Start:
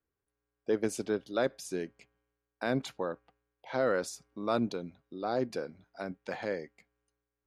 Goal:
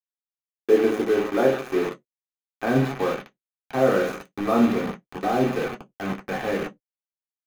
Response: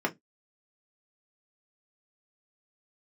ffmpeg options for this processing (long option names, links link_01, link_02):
-filter_complex "[0:a]highshelf=frequency=2700:gain=-12,asplit=2[link_01][link_02];[link_02]aecho=0:1:30|75|142.5|243.8|395.6:0.631|0.398|0.251|0.158|0.1[link_03];[link_01][link_03]amix=inputs=2:normalize=0,acrusher=bits=5:mix=0:aa=0.000001[link_04];[1:a]atrim=start_sample=2205,asetrate=52920,aresample=44100[link_05];[link_04][link_05]afir=irnorm=-1:irlink=0,asubboost=boost=8.5:cutoff=110"